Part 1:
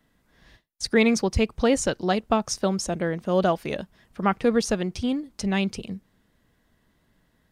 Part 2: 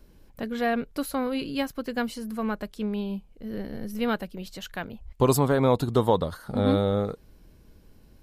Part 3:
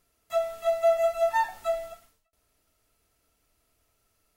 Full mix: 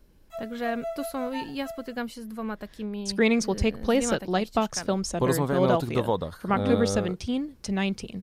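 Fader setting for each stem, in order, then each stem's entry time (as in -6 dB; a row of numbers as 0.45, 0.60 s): -2.5, -4.0, -12.0 dB; 2.25, 0.00, 0.00 s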